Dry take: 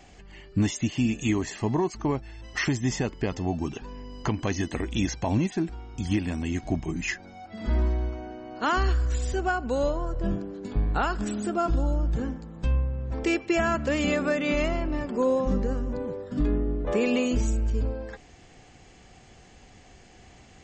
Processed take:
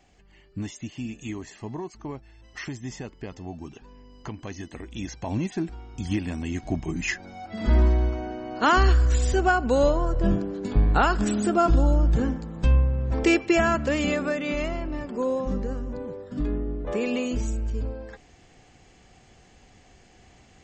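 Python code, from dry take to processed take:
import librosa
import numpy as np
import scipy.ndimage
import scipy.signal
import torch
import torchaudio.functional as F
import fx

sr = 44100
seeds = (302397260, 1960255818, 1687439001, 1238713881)

y = fx.gain(x, sr, db=fx.line((4.9, -9.0), (5.54, -1.0), (6.61, -1.0), (7.6, 5.5), (13.28, 5.5), (14.49, -2.5)))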